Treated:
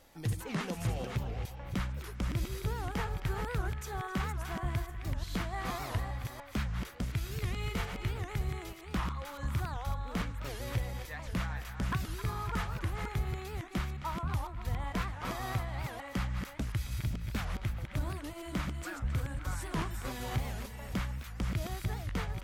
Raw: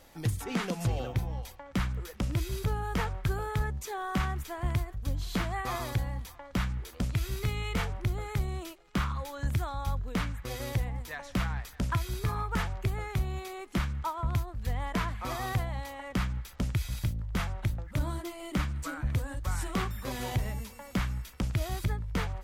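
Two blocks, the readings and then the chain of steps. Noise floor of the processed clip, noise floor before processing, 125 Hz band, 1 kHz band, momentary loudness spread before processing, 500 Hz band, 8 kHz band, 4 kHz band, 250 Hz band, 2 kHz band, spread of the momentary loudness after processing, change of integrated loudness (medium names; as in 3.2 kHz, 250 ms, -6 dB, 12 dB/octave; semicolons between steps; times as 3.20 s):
-46 dBFS, -50 dBFS, -3.5 dB, -3.5 dB, 4 LU, -3.5 dB, -3.5 dB, -3.0 dB, -3.5 dB, -2.5 dB, 3 LU, -3.5 dB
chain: chunks repeated in reverse 291 ms, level -6 dB; band-passed feedback delay 265 ms, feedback 63%, band-pass 2 kHz, level -9 dB; warped record 78 rpm, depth 250 cents; trim -4.5 dB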